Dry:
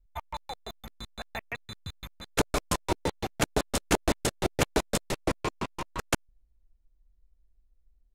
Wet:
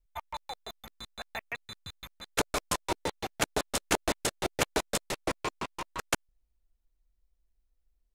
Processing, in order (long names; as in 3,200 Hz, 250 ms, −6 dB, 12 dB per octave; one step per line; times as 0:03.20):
low-shelf EQ 360 Hz −9 dB